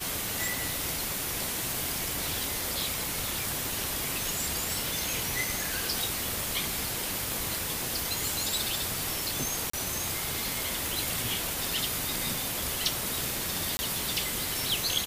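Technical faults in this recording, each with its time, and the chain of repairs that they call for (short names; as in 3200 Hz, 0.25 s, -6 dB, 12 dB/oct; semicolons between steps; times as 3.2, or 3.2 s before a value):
7.32 pop
9.7–9.73 gap 34 ms
13.77–13.79 gap 20 ms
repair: de-click; interpolate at 9.7, 34 ms; interpolate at 13.77, 20 ms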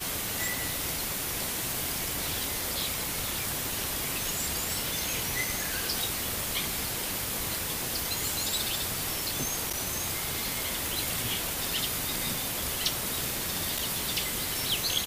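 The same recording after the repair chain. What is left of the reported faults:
none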